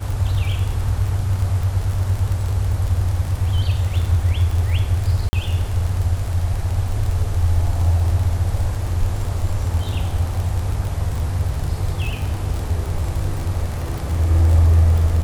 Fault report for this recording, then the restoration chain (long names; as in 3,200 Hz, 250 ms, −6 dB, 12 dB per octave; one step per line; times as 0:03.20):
surface crackle 41 per second −23 dBFS
0:05.29–0:05.33: drop-out 40 ms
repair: click removal
repair the gap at 0:05.29, 40 ms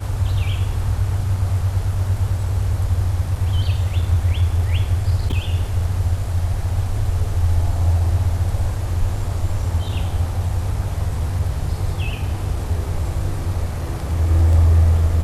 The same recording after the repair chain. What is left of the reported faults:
none of them is left